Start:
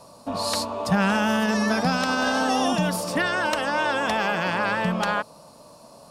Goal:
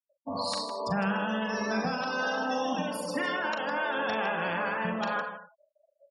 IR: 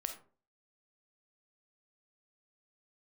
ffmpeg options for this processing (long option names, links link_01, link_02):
-filter_complex "[0:a]asettb=1/sr,asplit=3[link_01][link_02][link_03];[link_01]atrim=end=2.444[link_04];[link_02]atrim=start=2.44:end=3.37,asetpts=PTS-STARTPTS,afade=type=in:duration=0.004:curve=qsin,afade=type=out:start_time=0.926:duration=0.004:curve=qsin,aecho=1:1:3.8:0.64,atrim=end_sample=41013[link_05];[link_03]atrim=start=3.366[link_06];[link_04][link_05]acrossfade=duration=0.004:curve1=hsin:curve2=qsin[link_07];[link_07][link_06]acrossfade=duration=0.004:curve1=qsin:curve2=hsin[link_08];[1:a]atrim=start_sample=2205,asetrate=33516,aresample=44100[link_09];[link_08][link_09]afir=irnorm=-1:irlink=0,alimiter=limit=-14dB:level=0:latency=1:release=408,lowshelf=frequency=210:gain=-3.5,afftfilt=real='re*gte(hypot(re,im),0.0355)':imag='im*gte(hypot(re,im),0.0355)':win_size=1024:overlap=0.75,aecho=1:1:40.82|157.4:0.355|0.282,volume=-5.5dB"